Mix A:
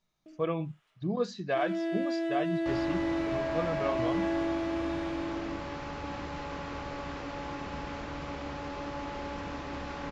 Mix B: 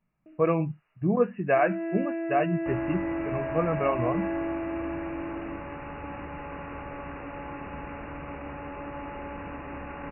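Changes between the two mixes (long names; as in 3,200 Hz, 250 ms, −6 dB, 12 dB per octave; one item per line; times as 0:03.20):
speech +7.0 dB
master: add linear-phase brick-wall low-pass 2,900 Hz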